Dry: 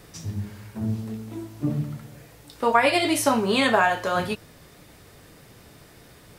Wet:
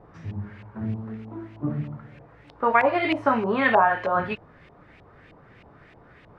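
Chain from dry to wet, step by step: LFO low-pass saw up 3.2 Hz 780–2700 Hz; gain -2.5 dB

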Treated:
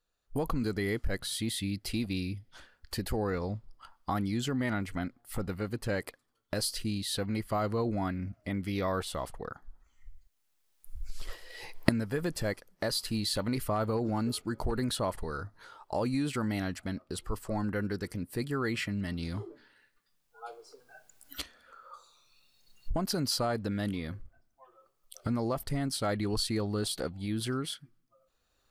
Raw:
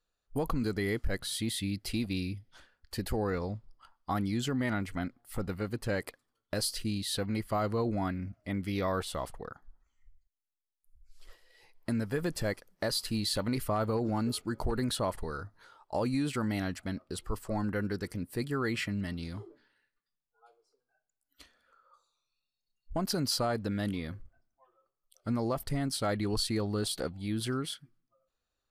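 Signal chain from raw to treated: recorder AGC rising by 12 dB/s

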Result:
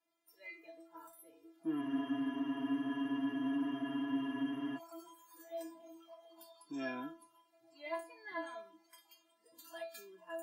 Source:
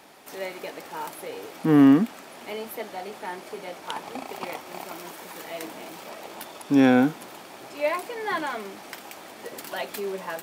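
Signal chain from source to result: spectral noise reduction 18 dB; metallic resonator 330 Hz, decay 0.35 s, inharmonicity 0.002; spectral freeze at 1.84, 2.94 s

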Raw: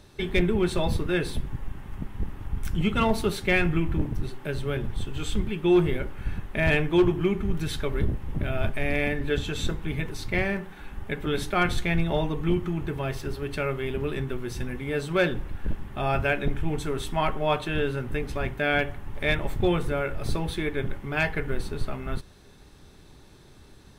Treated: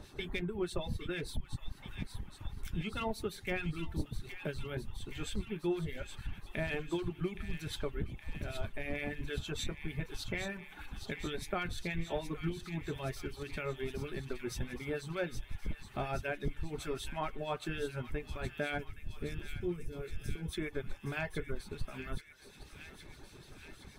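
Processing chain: reverb removal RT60 0.78 s; spectral gain 18.78–20.53, 480–4900 Hz -16 dB; compressor 2.5:1, threshold -40 dBFS, peak gain reduction 15.5 dB; harmonic tremolo 6.5 Hz, depth 70%, crossover 1600 Hz; thin delay 0.819 s, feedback 68%, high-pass 2100 Hz, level -7 dB; gain +3.5 dB

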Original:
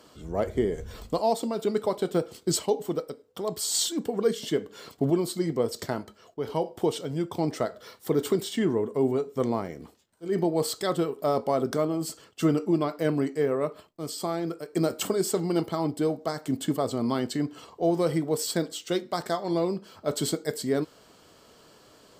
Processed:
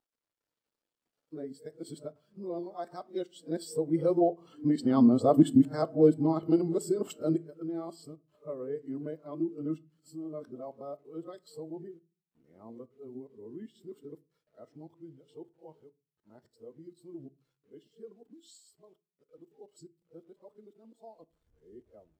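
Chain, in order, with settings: whole clip reversed; Doppler pass-by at 5.46, 6 m/s, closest 4.6 m; notch 6400 Hz, Q 11; in parallel at -1.5 dB: compressor, threshold -46 dBFS, peak gain reduction 22.5 dB; on the sum: requantised 10-bit, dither none; on a send at -12 dB: reverb RT60 0.55 s, pre-delay 3 ms; on the sum: spectral expander 1.5:1; gain +3 dB

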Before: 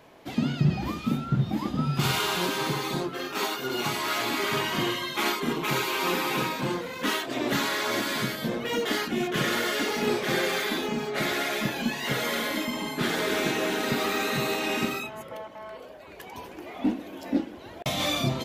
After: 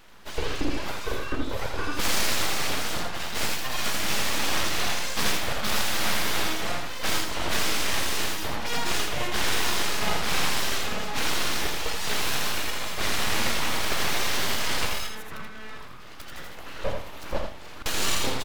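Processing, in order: low shelf 380 Hz -7.5 dB; full-wave rectifier; echo 82 ms -5 dB; gain +4.5 dB

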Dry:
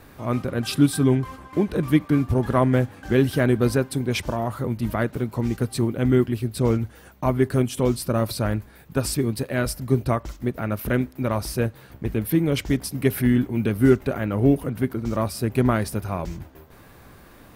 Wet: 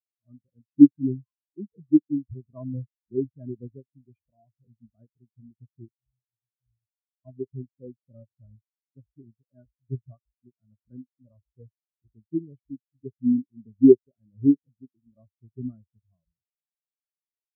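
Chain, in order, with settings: 5.88–7.25 inverse Chebyshev band-stop 310–1100 Hz, stop band 70 dB; spectral expander 4:1; gain +3.5 dB

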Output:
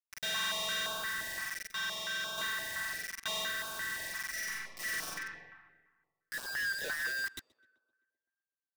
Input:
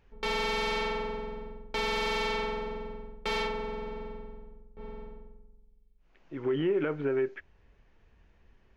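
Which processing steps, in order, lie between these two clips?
band inversion scrambler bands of 2000 Hz; graphic EQ 125/250/500/1000/2000/4000/8000 Hz +5/-4/+11/+6/+7/+11/+8 dB; bit-crush 5-bit; 1.69–2.38 resonator 120 Hz, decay 0.26 s, harmonics all, mix 70%; 4.29–5.07 reverb throw, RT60 1.4 s, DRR -7 dB; soft clip -23 dBFS, distortion -9 dB; tape echo 0.127 s, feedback 66%, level -21 dB, low-pass 3200 Hz; stepped notch 5.8 Hz 470–1900 Hz; gain -7.5 dB

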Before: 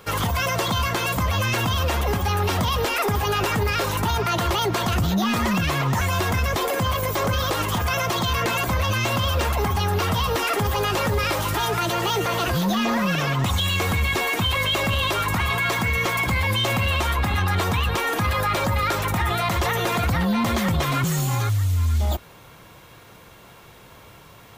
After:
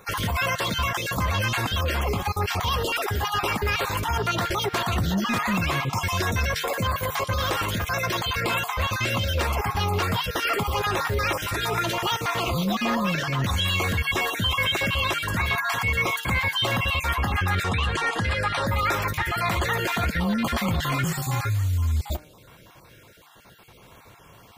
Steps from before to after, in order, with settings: random spectral dropouts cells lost 26%; dynamic EQ 1900 Hz, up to +4 dB, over -36 dBFS, Q 0.86; de-hum 151.7 Hz, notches 17; 5.93–6.6 bell 5300 Hz +8 dB 0.28 oct; 17.63–18.67 LPF 9400 Hz 24 dB/oct; gain -2.5 dB

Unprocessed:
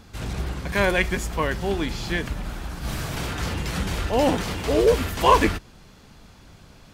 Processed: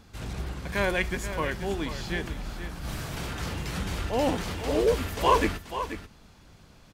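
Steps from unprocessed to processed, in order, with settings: echo 0.484 s -10.5 dB; gain -5.5 dB

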